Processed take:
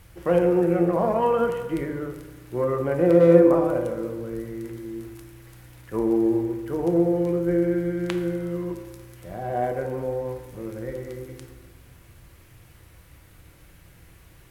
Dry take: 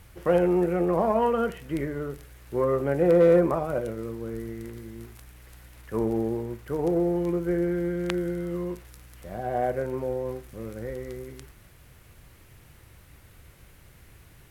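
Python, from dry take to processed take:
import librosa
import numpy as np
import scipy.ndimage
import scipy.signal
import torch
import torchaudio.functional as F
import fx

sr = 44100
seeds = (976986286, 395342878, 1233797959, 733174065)

y = fx.rev_fdn(x, sr, rt60_s=1.4, lf_ratio=1.25, hf_ratio=0.6, size_ms=18.0, drr_db=5.5)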